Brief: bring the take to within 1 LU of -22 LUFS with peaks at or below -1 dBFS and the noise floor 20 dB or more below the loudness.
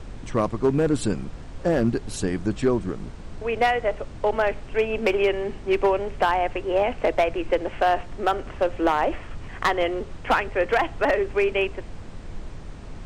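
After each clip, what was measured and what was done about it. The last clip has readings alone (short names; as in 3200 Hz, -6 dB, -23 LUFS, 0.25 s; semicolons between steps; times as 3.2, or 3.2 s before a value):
clipped 0.8%; flat tops at -13.0 dBFS; noise floor -39 dBFS; noise floor target -44 dBFS; loudness -24.0 LUFS; peak -13.0 dBFS; loudness target -22.0 LUFS
-> clip repair -13 dBFS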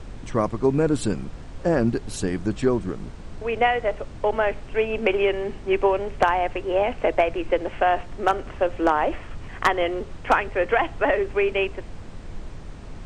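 clipped 0.0%; noise floor -39 dBFS; noise floor target -44 dBFS
-> noise print and reduce 6 dB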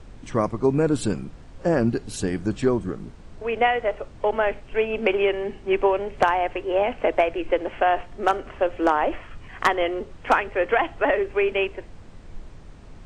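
noise floor -44 dBFS; loudness -23.5 LUFS; peak -4.0 dBFS; loudness target -22.0 LUFS
-> gain +1.5 dB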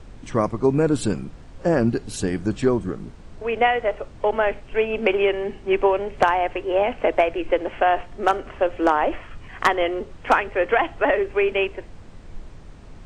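loudness -22.0 LUFS; peak -2.5 dBFS; noise floor -43 dBFS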